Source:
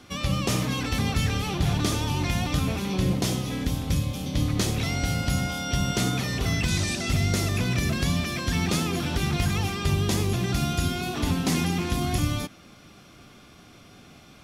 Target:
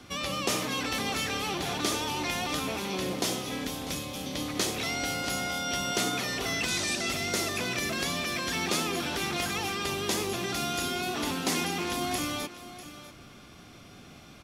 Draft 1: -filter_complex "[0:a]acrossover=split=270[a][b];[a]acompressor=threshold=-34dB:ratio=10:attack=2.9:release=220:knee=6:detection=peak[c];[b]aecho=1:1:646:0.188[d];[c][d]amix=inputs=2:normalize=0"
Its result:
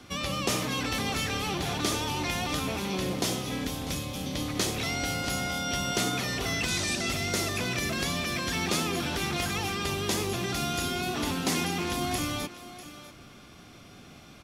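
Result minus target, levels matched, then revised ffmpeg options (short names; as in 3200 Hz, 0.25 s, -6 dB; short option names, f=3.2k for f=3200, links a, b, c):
compressor: peak gain reduction -7.5 dB
-filter_complex "[0:a]acrossover=split=270[a][b];[a]acompressor=threshold=-42.5dB:ratio=10:attack=2.9:release=220:knee=6:detection=peak[c];[b]aecho=1:1:646:0.188[d];[c][d]amix=inputs=2:normalize=0"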